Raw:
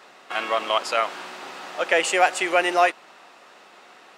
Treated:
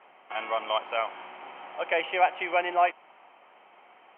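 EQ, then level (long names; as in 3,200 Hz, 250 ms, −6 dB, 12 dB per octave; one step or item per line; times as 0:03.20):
Chebyshev low-pass with heavy ripple 3,200 Hz, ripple 9 dB
−2.0 dB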